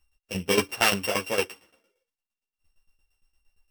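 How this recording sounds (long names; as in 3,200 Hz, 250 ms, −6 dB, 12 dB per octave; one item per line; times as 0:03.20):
a buzz of ramps at a fixed pitch in blocks of 16 samples
tremolo saw down 8.7 Hz, depth 85%
a shimmering, thickened sound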